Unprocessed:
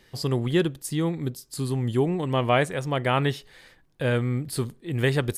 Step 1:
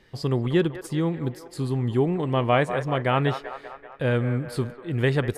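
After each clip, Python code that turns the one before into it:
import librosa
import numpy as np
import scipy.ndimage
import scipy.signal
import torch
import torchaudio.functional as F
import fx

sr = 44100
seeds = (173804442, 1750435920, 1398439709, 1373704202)

y = fx.lowpass(x, sr, hz=2800.0, slope=6)
y = fx.echo_wet_bandpass(y, sr, ms=193, feedback_pct=61, hz=980.0, wet_db=-9.0)
y = y * 10.0 ** (1.0 / 20.0)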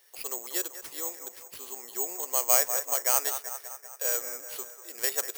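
y = scipy.signal.sosfilt(scipy.signal.butter(4, 510.0, 'highpass', fs=sr, output='sos'), x)
y = (np.kron(y[::6], np.eye(6)[0]) * 6)[:len(y)]
y = y * 10.0 ** (-8.0 / 20.0)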